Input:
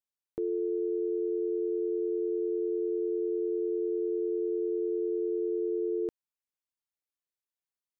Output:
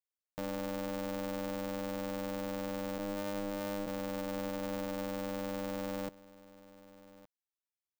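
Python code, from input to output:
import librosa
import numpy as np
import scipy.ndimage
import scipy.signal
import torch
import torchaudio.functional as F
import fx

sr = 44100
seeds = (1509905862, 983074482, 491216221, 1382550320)

y = fx.sine_speech(x, sr, at=(2.98, 3.87))
y = y + 10.0 ** (-19.5 / 20.0) * np.pad(y, (int(1165 * sr / 1000.0), 0))[:len(y)]
y = y * np.sign(np.sin(2.0 * np.pi * 150.0 * np.arange(len(y)) / sr))
y = y * 10.0 ** (-7.0 / 20.0)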